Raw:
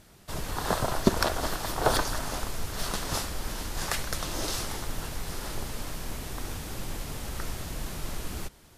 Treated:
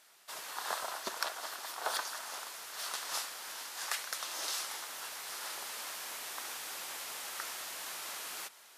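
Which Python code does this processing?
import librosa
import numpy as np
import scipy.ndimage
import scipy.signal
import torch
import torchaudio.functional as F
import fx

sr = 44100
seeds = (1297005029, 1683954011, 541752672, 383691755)

p1 = fx.rider(x, sr, range_db=5, speed_s=2.0)
p2 = scipy.signal.sosfilt(scipy.signal.butter(2, 930.0, 'highpass', fs=sr, output='sos'), p1)
p3 = p2 + fx.echo_single(p2, sr, ms=514, db=-19.0, dry=0)
y = F.gain(torch.from_numpy(p3), -4.5).numpy()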